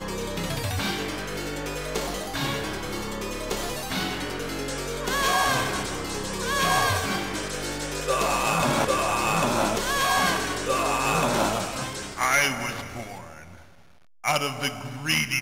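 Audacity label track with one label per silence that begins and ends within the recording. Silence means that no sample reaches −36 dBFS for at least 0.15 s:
13.550000	14.240000	silence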